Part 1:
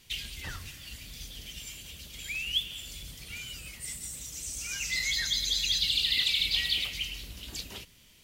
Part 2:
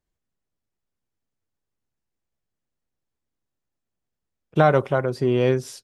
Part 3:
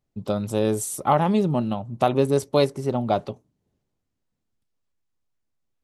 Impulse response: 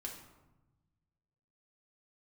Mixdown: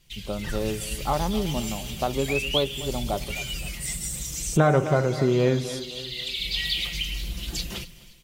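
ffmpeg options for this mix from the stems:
-filter_complex "[0:a]aecho=1:1:5.8:0.73,dynaudnorm=f=200:g=5:m=4.47,volume=0.422,asplit=3[s0][s1][s2];[s1]volume=0.0891[s3];[s2]volume=0.0841[s4];[1:a]volume=1.26,asplit=4[s5][s6][s7][s8];[s6]volume=0.316[s9];[s7]volume=0.15[s10];[2:a]volume=0.473,asplit=2[s11][s12];[s12]volume=0.168[s13];[s8]apad=whole_len=363604[s14];[s0][s14]sidechaincompress=threshold=0.00631:ratio=8:attack=16:release=588[s15];[s15][s5]amix=inputs=2:normalize=0,lowshelf=f=180:g=10.5,acompressor=threshold=0.0501:ratio=2,volume=1[s16];[3:a]atrim=start_sample=2205[s17];[s3][s9]amix=inputs=2:normalize=0[s18];[s18][s17]afir=irnorm=-1:irlink=0[s19];[s4][s10][s13]amix=inputs=3:normalize=0,aecho=0:1:260|520|780|1040|1300|1560:1|0.44|0.194|0.0852|0.0375|0.0165[s20];[s11][s16][s19][s20]amix=inputs=4:normalize=0"

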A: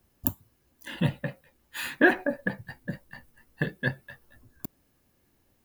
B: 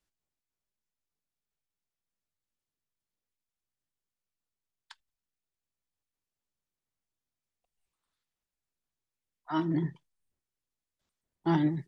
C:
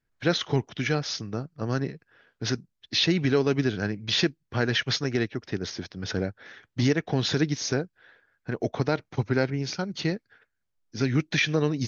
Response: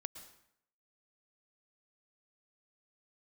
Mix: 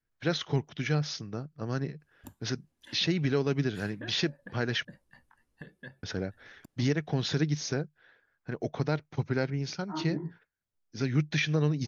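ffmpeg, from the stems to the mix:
-filter_complex "[0:a]lowpass=f=11000:w=0.5412,lowpass=f=11000:w=1.3066,acompressor=threshold=0.0251:ratio=3,adelay=2000,volume=0.251[s0];[1:a]lowpass=f=1500:w=0.5412,lowpass=f=1500:w=1.3066,dynaudnorm=f=770:g=7:m=1.78,flanger=delay=17:depth=5:speed=1.7,adelay=400,volume=0.447[s1];[2:a]adynamicequalizer=threshold=0.00631:dfrequency=150:dqfactor=7.1:tfrequency=150:tqfactor=7.1:attack=5:release=100:ratio=0.375:range=4:mode=boostabove:tftype=bell,volume=0.531,asplit=3[s2][s3][s4];[s2]atrim=end=4.85,asetpts=PTS-STARTPTS,afade=t=out:st=4.846:d=0.004:c=hsin[s5];[s3]atrim=start=4.85:end=6.03,asetpts=PTS-STARTPTS,volume=0[s6];[s4]atrim=start=6.03,asetpts=PTS-STARTPTS,afade=t=in:d=0.004:c=hsin[s7];[s5][s6][s7]concat=n=3:v=0:a=1,asplit=2[s8][s9];[s9]apad=whole_len=337075[s10];[s0][s10]sidechaincompress=threshold=0.0224:ratio=8:attack=11:release=119[s11];[s11][s1][s8]amix=inputs=3:normalize=0"

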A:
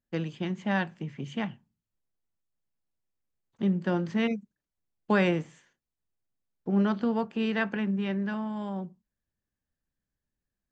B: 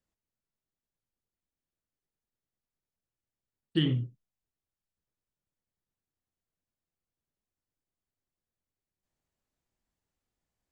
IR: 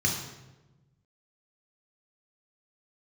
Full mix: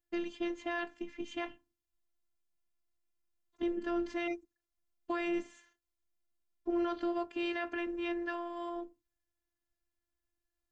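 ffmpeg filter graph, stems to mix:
-filter_complex "[0:a]volume=1.26[s0];[1:a]lowpass=f=1600:w=0.5412,lowpass=f=1600:w=1.3066,volume=0.224[s1];[s0][s1]amix=inputs=2:normalize=0,afftfilt=real='hypot(re,im)*cos(PI*b)':imag='0':win_size=512:overlap=0.75,alimiter=limit=0.0631:level=0:latency=1:release=10"

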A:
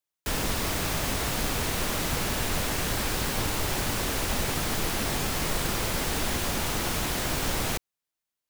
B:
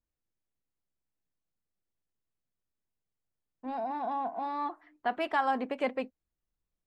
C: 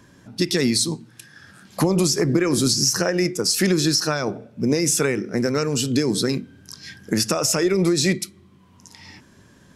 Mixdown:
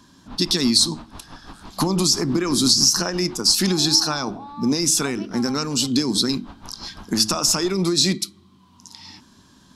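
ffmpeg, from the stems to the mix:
-filter_complex "[0:a]lowpass=1600,aeval=exprs='val(0)*pow(10,-19*(0.5-0.5*cos(2*PI*6*n/s))/20)':c=same,volume=0.531[s0];[1:a]acrossover=split=140[s1][s2];[s2]acompressor=threshold=0.0126:ratio=6[s3];[s1][s3]amix=inputs=2:normalize=0,volume=1.12,asplit=2[s4][s5];[2:a]bandreject=f=106.6:t=h:w=4,bandreject=f=213.2:t=h:w=4,bandreject=f=319.8:t=h:w=4,volume=1[s6];[s5]apad=whole_len=374633[s7];[s0][s7]sidechaincompress=threshold=0.00316:ratio=8:attack=41:release=562[s8];[s8][s4][s6]amix=inputs=3:normalize=0,equalizer=f=125:t=o:w=1:g=-6,equalizer=f=250:t=o:w=1:g=5,equalizer=f=500:t=o:w=1:g=-11,equalizer=f=1000:t=o:w=1:g=7,equalizer=f=2000:t=o:w=1:g=-9,equalizer=f=4000:t=o:w=1:g=9"

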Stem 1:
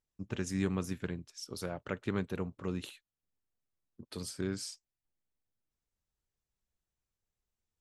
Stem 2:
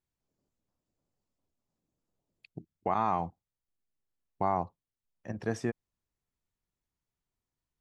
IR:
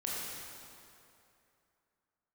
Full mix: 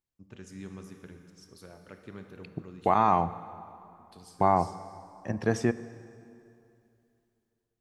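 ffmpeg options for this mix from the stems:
-filter_complex "[0:a]volume=0.2,asplit=2[s0][s1];[s1]volume=0.531[s2];[1:a]dynaudnorm=f=260:g=7:m=3.55,volume=0.531,asplit=2[s3][s4];[s4]volume=0.15[s5];[2:a]atrim=start_sample=2205[s6];[s2][s5]amix=inputs=2:normalize=0[s7];[s7][s6]afir=irnorm=-1:irlink=0[s8];[s0][s3][s8]amix=inputs=3:normalize=0"

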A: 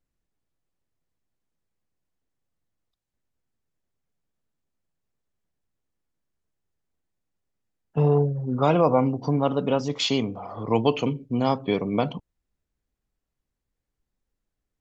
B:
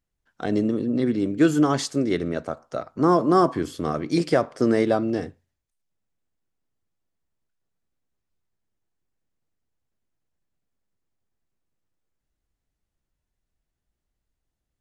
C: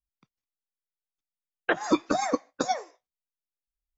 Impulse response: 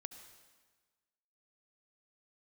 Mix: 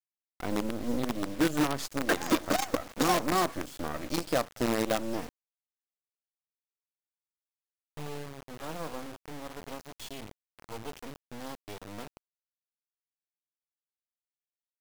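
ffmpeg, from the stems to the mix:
-filter_complex "[0:a]volume=0.158,asplit=2[s0][s1];[s1]volume=0.0891[s2];[1:a]equalizer=f=100:t=o:w=0.33:g=-9,equalizer=f=160:t=o:w=0.33:g=-5,equalizer=f=400:t=o:w=0.33:g=-8,equalizer=f=2000:t=o:w=0.33:g=-5,volume=0.944,asplit=2[s3][s4];[2:a]adelay=400,volume=1.26,asplit=2[s5][s6];[s6]volume=0.631[s7];[s4]apad=whole_len=192785[s8];[s5][s8]sidechaingate=range=0.0224:threshold=0.00891:ratio=16:detection=peak[s9];[3:a]atrim=start_sample=2205[s10];[s2][s7]amix=inputs=2:normalize=0[s11];[s11][s10]afir=irnorm=-1:irlink=0[s12];[s0][s3][s9][s12]amix=inputs=4:normalize=0,acrusher=bits=4:dc=4:mix=0:aa=0.000001,asoftclip=type=hard:threshold=0.237,alimiter=limit=0.119:level=0:latency=1:release=217"

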